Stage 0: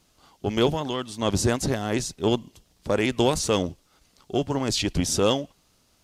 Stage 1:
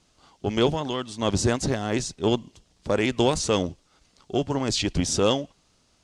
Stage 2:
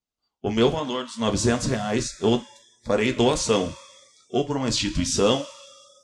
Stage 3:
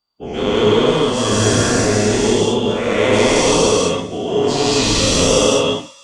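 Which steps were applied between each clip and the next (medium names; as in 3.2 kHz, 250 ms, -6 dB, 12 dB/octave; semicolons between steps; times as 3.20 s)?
low-pass 8.9 kHz 24 dB/octave
two-slope reverb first 0.25 s, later 2.8 s, from -18 dB, DRR 4 dB; spectral noise reduction 29 dB
every event in the spectrogram widened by 480 ms; gated-style reverb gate 240 ms rising, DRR -4.5 dB; trim -6 dB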